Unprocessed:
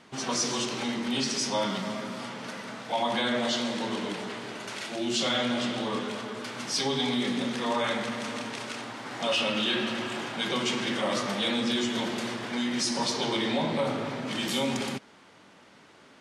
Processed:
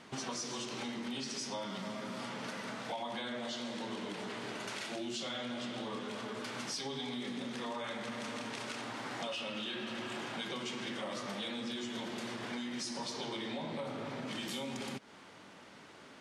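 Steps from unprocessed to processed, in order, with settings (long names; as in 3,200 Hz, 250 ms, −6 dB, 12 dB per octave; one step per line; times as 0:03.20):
downward compressor 6 to 1, threshold −38 dBFS, peak gain reduction 13.5 dB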